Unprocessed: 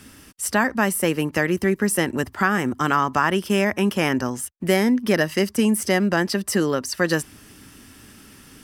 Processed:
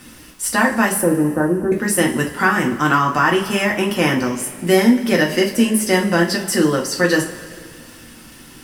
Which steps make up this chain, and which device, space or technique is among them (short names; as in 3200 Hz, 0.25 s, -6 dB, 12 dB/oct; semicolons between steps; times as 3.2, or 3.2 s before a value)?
vinyl LP (crackle 82/s -37 dBFS; pink noise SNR 34 dB); 1.01–1.72 steep low-pass 1600 Hz 96 dB/oct; two-slope reverb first 0.28 s, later 2.2 s, from -18 dB, DRR -1.5 dB; gain +1 dB